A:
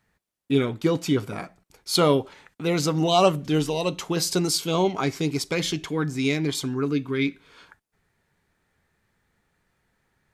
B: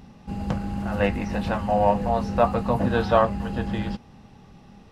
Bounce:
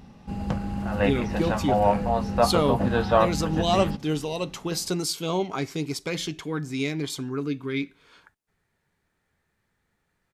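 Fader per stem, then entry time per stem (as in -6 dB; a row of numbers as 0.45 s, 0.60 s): -4.0 dB, -1.0 dB; 0.55 s, 0.00 s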